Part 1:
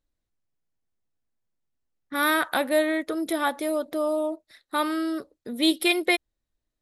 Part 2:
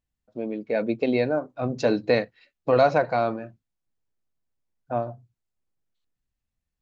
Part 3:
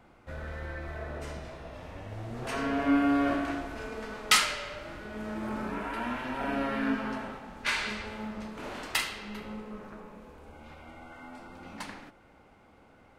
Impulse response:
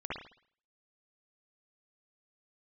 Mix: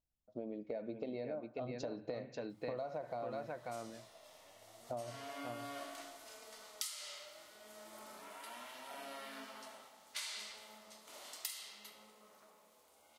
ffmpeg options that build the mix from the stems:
-filter_complex "[1:a]volume=-8dB,asplit=3[link_01][link_02][link_03];[link_02]volume=-22dB[link_04];[link_03]volume=-9dB[link_05];[2:a]aderivative,adelay=2500,volume=2dB[link_06];[link_01][link_06]amix=inputs=2:normalize=0,equalizer=frequency=630:width_type=o:width=0.33:gain=7,equalizer=frequency=1600:width_type=o:width=0.33:gain=-10,equalizer=frequency=2500:width_type=o:width=0.33:gain=-8,acompressor=threshold=-33dB:ratio=2.5,volume=0dB[link_07];[3:a]atrim=start_sample=2205[link_08];[link_04][link_08]afir=irnorm=-1:irlink=0[link_09];[link_05]aecho=0:1:539:1[link_10];[link_07][link_09][link_10]amix=inputs=3:normalize=0,acompressor=threshold=-40dB:ratio=4"

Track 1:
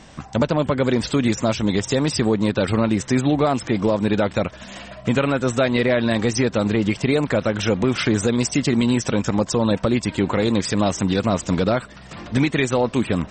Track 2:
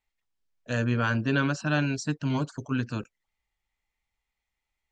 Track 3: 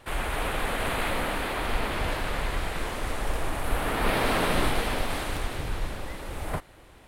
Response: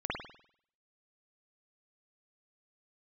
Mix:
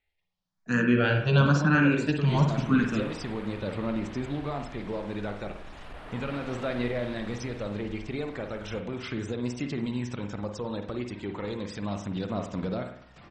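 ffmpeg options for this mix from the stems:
-filter_complex "[0:a]aphaser=in_gain=1:out_gain=1:delay=2.7:decay=0.26:speed=0.35:type=sinusoidal,adelay=1050,volume=-17.5dB,asplit=2[link_01][link_02];[link_02]volume=-8.5dB[link_03];[1:a]equalizer=frequency=180:width_type=o:width=0.26:gain=14.5,asplit=2[link_04][link_05];[link_05]afreqshift=0.99[link_06];[link_04][link_06]amix=inputs=2:normalize=1,volume=2.5dB,asplit=2[link_07][link_08];[link_08]volume=-6.5dB[link_09];[2:a]asoftclip=type=tanh:threshold=-21dB,adelay=2200,volume=-14.5dB[link_10];[3:a]atrim=start_sample=2205[link_11];[link_03][link_09]amix=inputs=2:normalize=0[link_12];[link_12][link_11]afir=irnorm=-1:irlink=0[link_13];[link_01][link_07][link_10][link_13]amix=inputs=4:normalize=0,lowpass=5300"

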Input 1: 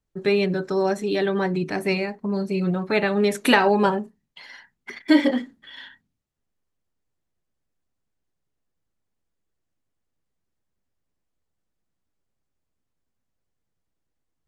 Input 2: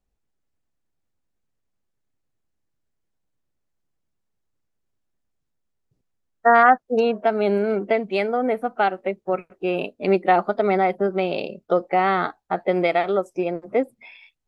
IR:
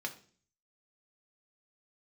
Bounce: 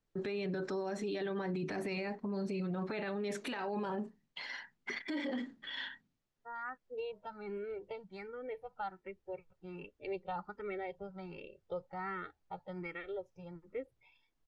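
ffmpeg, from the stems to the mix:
-filter_complex "[0:a]equalizer=frequency=65:width=0.92:gain=-9.5,acompressor=threshold=-27dB:ratio=6,volume=0dB,asplit=2[link_01][link_02];[1:a]aecho=1:1:2.2:0.8,asubboost=boost=7.5:cutoff=140,asplit=2[link_03][link_04];[link_04]afreqshift=1.3[link_05];[link_03][link_05]amix=inputs=2:normalize=1,volume=-18.5dB[link_06];[link_02]apad=whole_len=638356[link_07];[link_06][link_07]sidechaincompress=threshold=-52dB:ratio=10:attack=16:release=1100[link_08];[link_01][link_08]amix=inputs=2:normalize=0,lowpass=6000,alimiter=level_in=6.5dB:limit=-24dB:level=0:latency=1:release=11,volume=-6.5dB"

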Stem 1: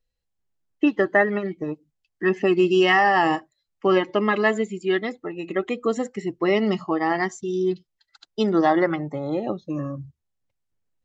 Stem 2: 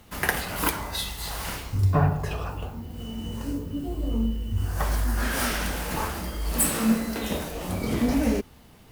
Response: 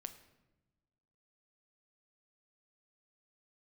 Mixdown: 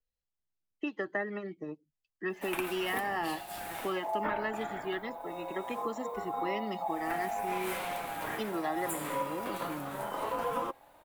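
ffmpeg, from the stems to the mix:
-filter_complex "[0:a]volume=-11dB[link_01];[1:a]equalizer=frequency=5100:width_type=o:width=0.86:gain=-11.5,aeval=exprs='val(0)*sin(2*PI*760*n/s)':channel_layout=same,flanger=delay=3.2:depth=4.2:regen=60:speed=0.23:shape=triangular,adelay=2300,volume=0dB[link_02];[link_01][link_02]amix=inputs=2:normalize=0,acrossover=split=170|410|820[link_03][link_04][link_05][link_06];[link_03]acompressor=threshold=-56dB:ratio=4[link_07];[link_04]acompressor=threshold=-38dB:ratio=4[link_08];[link_05]acompressor=threshold=-41dB:ratio=4[link_09];[link_06]acompressor=threshold=-33dB:ratio=4[link_10];[link_07][link_08][link_09][link_10]amix=inputs=4:normalize=0,adynamicequalizer=threshold=0.00501:dfrequency=4500:dqfactor=0.7:tfrequency=4500:tqfactor=0.7:attack=5:release=100:ratio=0.375:range=1.5:mode=cutabove:tftype=highshelf"

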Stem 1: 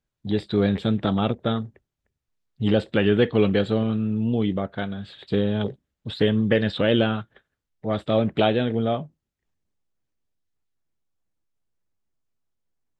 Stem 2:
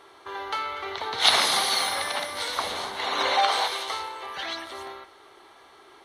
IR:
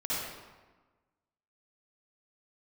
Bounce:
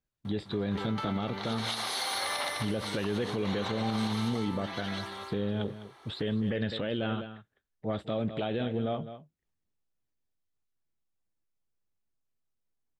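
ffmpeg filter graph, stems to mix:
-filter_complex "[0:a]volume=-5.5dB,asplit=3[link_01][link_02][link_03];[link_02]volume=-15dB[link_04];[1:a]acompressor=threshold=-25dB:ratio=6,adelay=250,volume=-3dB,asplit=2[link_05][link_06];[link_06]volume=-4.5dB[link_07];[link_03]apad=whole_len=277601[link_08];[link_05][link_08]sidechaincompress=threshold=-33dB:ratio=4:attack=10:release=867[link_09];[link_04][link_07]amix=inputs=2:normalize=0,aecho=0:1:205:1[link_10];[link_01][link_09][link_10]amix=inputs=3:normalize=0,alimiter=limit=-21.5dB:level=0:latency=1:release=56"

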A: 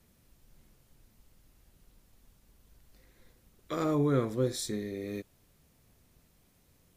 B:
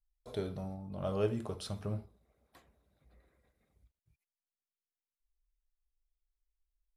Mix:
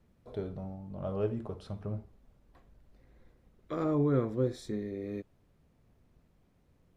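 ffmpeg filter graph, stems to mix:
ffmpeg -i stem1.wav -i stem2.wav -filter_complex "[0:a]volume=0dB[link_01];[1:a]volume=0.5dB[link_02];[link_01][link_02]amix=inputs=2:normalize=0,lowpass=frequency=1100:poles=1" out.wav

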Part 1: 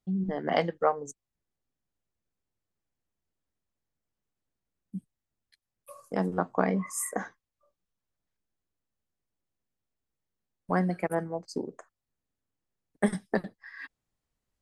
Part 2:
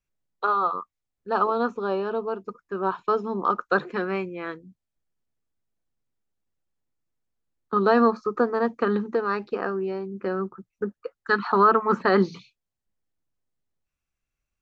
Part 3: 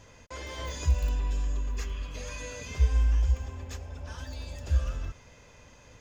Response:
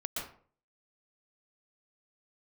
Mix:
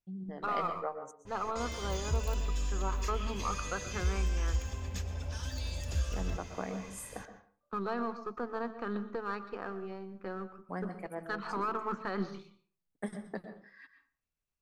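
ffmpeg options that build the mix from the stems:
-filter_complex "[0:a]volume=-15dB,asplit=2[link_01][link_02];[link_02]volume=-7dB[link_03];[1:a]aeval=exprs='if(lt(val(0),0),0.708*val(0),val(0))':channel_layout=same,equalizer=frequency=380:width=1.5:gain=-4,alimiter=limit=-15.5dB:level=0:latency=1,volume=-10.5dB,asplit=2[link_04][link_05];[link_05]volume=-12.5dB[link_06];[2:a]acrossover=split=250|3600[link_07][link_08][link_09];[link_07]acompressor=threshold=-31dB:ratio=4[link_10];[link_08]acompressor=threshold=-49dB:ratio=4[link_11];[link_09]acompressor=threshold=-52dB:ratio=4[link_12];[link_10][link_11][link_12]amix=inputs=3:normalize=0,adynamicequalizer=threshold=0.00112:dfrequency=2000:dqfactor=0.7:tfrequency=2000:tqfactor=0.7:attack=5:release=100:ratio=0.375:range=2.5:mode=boostabove:tftype=highshelf,adelay=1250,volume=0dB,asplit=2[link_13][link_14];[link_14]volume=-13.5dB[link_15];[3:a]atrim=start_sample=2205[link_16];[link_03][link_06][link_15]amix=inputs=3:normalize=0[link_17];[link_17][link_16]afir=irnorm=-1:irlink=0[link_18];[link_01][link_04][link_13][link_18]amix=inputs=4:normalize=0"

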